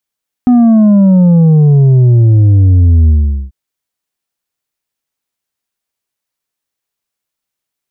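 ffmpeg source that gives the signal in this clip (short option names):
-f lavfi -i "aevalsrc='0.631*clip((3.04-t)/0.43,0,1)*tanh(1.78*sin(2*PI*250*3.04/log(65/250)*(exp(log(65/250)*t/3.04)-1)))/tanh(1.78)':d=3.04:s=44100"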